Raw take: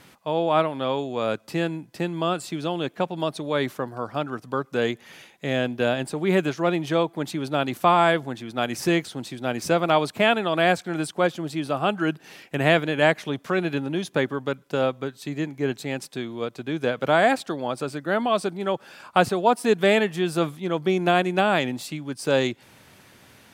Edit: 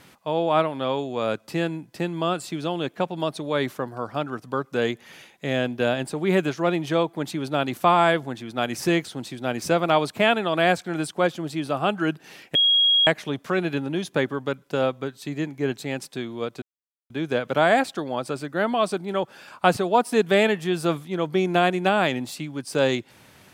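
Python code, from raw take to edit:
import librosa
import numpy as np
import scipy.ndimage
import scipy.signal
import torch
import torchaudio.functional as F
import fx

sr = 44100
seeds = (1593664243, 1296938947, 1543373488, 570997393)

y = fx.edit(x, sr, fx.bleep(start_s=12.55, length_s=0.52, hz=3290.0, db=-15.0),
    fx.insert_silence(at_s=16.62, length_s=0.48), tone=tone)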